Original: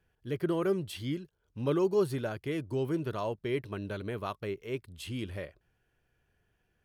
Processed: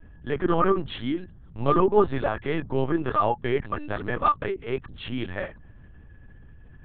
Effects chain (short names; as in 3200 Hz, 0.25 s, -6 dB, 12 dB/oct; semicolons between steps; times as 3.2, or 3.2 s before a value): notches 50/100/150/200 Hz; small resonant body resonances 840/1200/1700 Hz, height 17 dB, ringing for 50 ms; hum 50 Hz, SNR 21 dB; LPC vocoder at 8 kHz pitch kept; gain +6.5 dB